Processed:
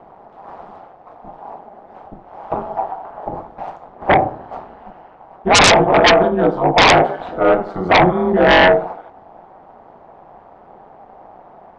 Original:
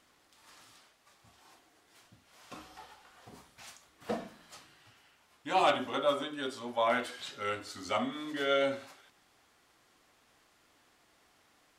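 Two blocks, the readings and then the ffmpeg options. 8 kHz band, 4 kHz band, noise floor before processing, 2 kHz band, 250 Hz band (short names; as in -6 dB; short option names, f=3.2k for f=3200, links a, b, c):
+24.5 dB, +20.0 dB, -68 dBFS, +22.0 dB, +20.0 dB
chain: -af "aeval=exprs='val(0)*sin(2*PI*93*n/s)':c=same,lowpass=f=770:t=q:w=3.9,aeval=exprs='0.335*sin(PI/2*7.94*val(0)/0.335)':c=same,volume=3.5dB"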